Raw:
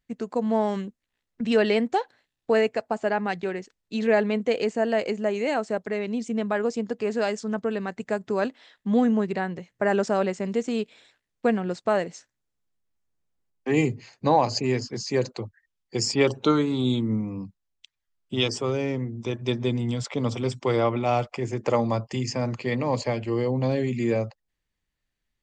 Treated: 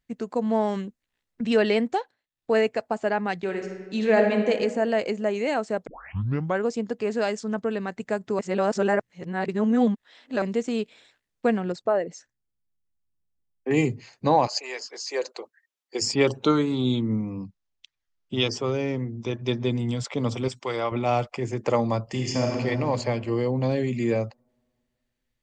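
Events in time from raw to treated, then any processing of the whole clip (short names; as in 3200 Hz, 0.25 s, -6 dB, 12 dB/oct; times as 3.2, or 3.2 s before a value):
1.9–2.56 dip -14.5 dB, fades 0.26 s
3.43–4.5 reverb throw, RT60 1.5 s, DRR 3 dB
5.87 tape start 0.74 s
8.39–10.42 reverse
11.72–13.71 formant sharpening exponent 1.5
14.46–16.01 HPF 650 Hz -> 290 Hz 24 dB/oct
16.75–19.71 steep low-pass 7000 Hz
20.48–20.92 low shelf 460 Hz -12 dB
22.03–22.53 reverb throw, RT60 2.6 s, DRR -1 dB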